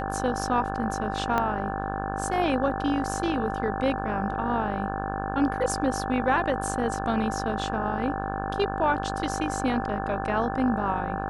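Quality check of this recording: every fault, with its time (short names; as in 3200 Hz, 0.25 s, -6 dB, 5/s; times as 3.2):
buzz 50 Hz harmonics 35 -32 dBFS
tone 780 Hz -32 dBFS
1.38 pop -12 dBFS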